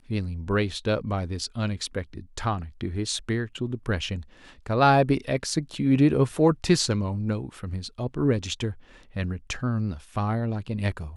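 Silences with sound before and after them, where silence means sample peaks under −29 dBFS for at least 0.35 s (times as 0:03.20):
0:04.19–0:04.66
0:08.71–0:09.16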